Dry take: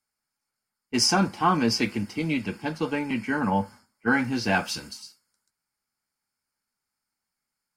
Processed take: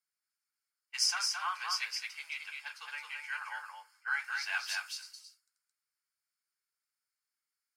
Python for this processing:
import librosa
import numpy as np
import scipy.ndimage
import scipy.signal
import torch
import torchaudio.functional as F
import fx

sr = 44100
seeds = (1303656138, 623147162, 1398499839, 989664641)

y = scipy.signal.sosfilt(scipy.signal.cheby2(4, 70, 270.0, 'highpass', fs=sr, output='sos'), x)
y = y + 10.0 ** (-4.0 / 20.0) * np.pad(y, (int(219 * sr / 1000.0), 0))[:len(y)]
y = y * librosa.db_to_amplitude(-7.0)